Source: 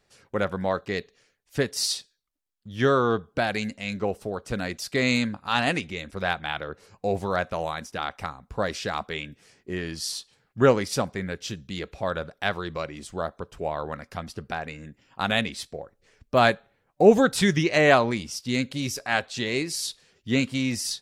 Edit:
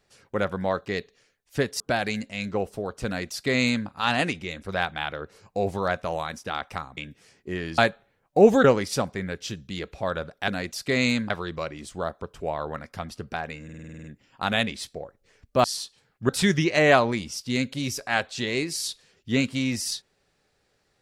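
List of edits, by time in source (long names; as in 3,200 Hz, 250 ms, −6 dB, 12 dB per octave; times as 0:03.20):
0:01.80–0:03.28: remove
0:04.54–0:05.36: duplicate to 0:12.48
0:08.45–0:09.18: remove
0:09.99–0:10.64: swap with 0:16.42–0:17.28
0:14.82: stutter 0.05 s, 9 plays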